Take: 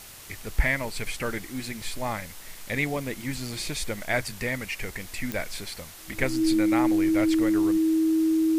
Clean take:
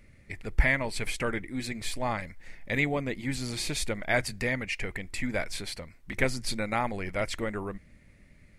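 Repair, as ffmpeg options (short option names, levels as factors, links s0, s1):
-af "adeclick=t=4,bandreject=f=320:w=30,afwtdn=0.0063"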